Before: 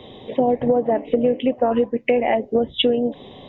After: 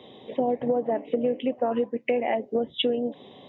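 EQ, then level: high-pass 150 Hz 12 dB/octave; -6.5 dB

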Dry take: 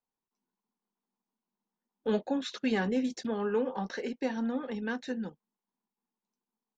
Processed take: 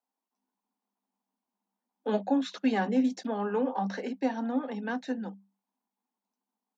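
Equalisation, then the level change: rippled Chebyshev high-pass 190 Hz, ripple 9 dB; +7.0 dB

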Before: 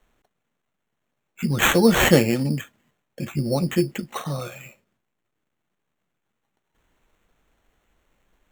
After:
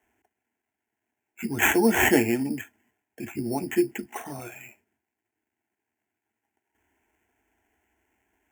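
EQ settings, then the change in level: high-pass 70 Hz 24 dB/octave; static phaser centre 800 Hz, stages 8; 0.0 dB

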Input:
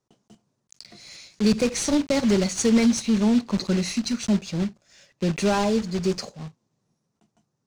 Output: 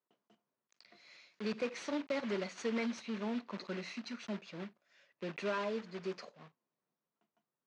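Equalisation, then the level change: band-pass 220–2400 Hz; bass shelf 480 Hz -11.5 dB; band-stop 800 Hz, Q 12; -7.0 dB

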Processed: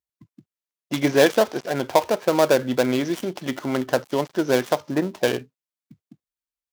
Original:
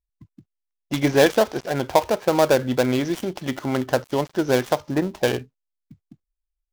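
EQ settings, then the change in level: high-pass 150 Hz 12 dB/octave; band-stop 810 Hz, Q 17; 0.0 dB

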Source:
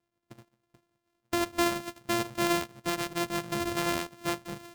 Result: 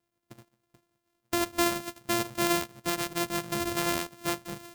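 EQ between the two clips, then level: treble shelf 6.7 kHz +6.5 dB; 0.0 dB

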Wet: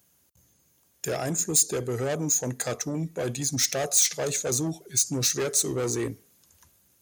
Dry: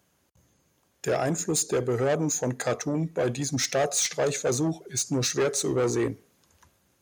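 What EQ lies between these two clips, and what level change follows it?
bass shelf 300 Hz +5.5 dB; treble shelf 2.5 kHz +7.5 dB; treble shelf 8.5 kHz +11.5 dB; -6.0 dB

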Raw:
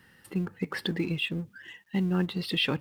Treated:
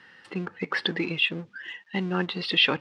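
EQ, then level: high-pass 700 Hz 6 dB/octave; Bessel low-pass 4 kHz, order 4; +9.0 dB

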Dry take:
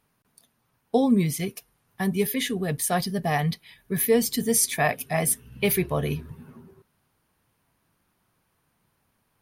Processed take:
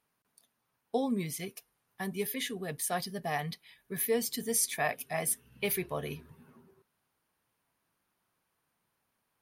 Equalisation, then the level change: bass shelf 210 Hz -10.5 dB; -7.0 dB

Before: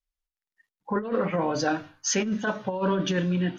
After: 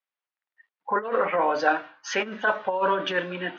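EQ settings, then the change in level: band-pass 630–2700 Hz; distance through air 67 m; +8.0 dB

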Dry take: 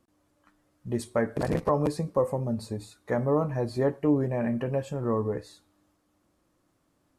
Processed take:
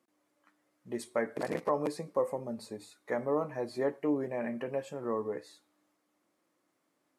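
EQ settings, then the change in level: high-pass 270 Hz 12 dB/octave; peaking EQ 2.1 kHz +5.5 dB 0.34 oct; -4.5 dB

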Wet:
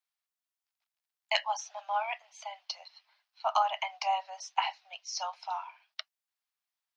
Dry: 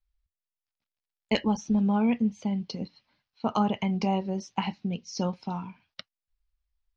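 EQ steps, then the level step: steep high-pass 630 Hz 96 dB/octave; +2.5 dB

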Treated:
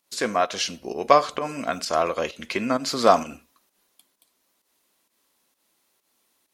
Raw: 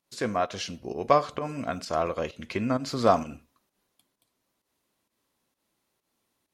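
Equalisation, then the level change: tilt EQ +1.5 dB/octave; peaking EQ 110 Hz -11 dB 0.74 oct; +5.5 dB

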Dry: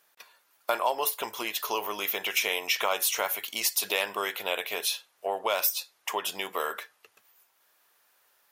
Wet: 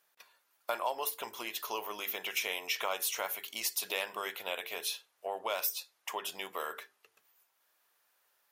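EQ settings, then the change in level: hum notches 50/100/150/200/250/300/350/400/450 Hz; -7.0 dB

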